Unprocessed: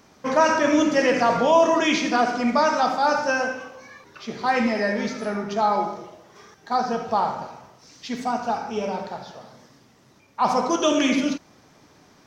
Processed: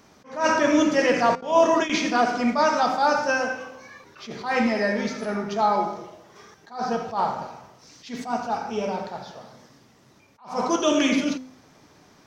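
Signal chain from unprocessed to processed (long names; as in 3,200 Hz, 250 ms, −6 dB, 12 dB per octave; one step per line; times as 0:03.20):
0:01.35–0:01.90: noise gate with hold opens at −10 dBFS
hum removal 257.4 Hz, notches 32
level that may rise only so fast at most 160 dB per second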